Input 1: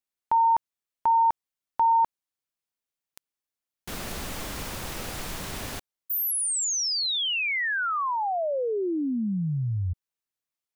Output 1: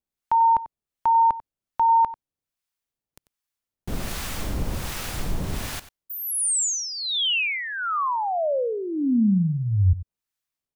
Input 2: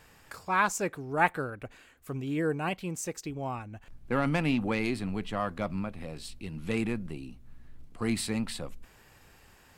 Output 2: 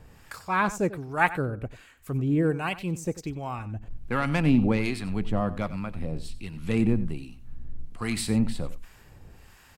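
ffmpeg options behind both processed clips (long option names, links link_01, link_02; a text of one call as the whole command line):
ffmpeg -i in.wav -filter_complex "[0:a]lowshelf=frequency=200:gain=9.5,acrossover=split=820[link_01][link_02];[link_01]aeval=exprs='val(0)*(1-0.7/2+0.7/2*cos(2*PI*1.3*n/s))':channel_layout=same[link_03];[link_02]aeval=exprs='val(0)*(1-0.7/2-0.7/2*cos(2*PI*1.3*n/s))':channel_layout=same[link_04];[link_03][link_04]amix=inputs=2:normalize=0,asplit=2[link_05][link_06];[link_06]aecho=0:1:93:0.168[link_07];[link_05][link_07]amix=inputs=2:normalize=0,volume=4.5dB" out.wav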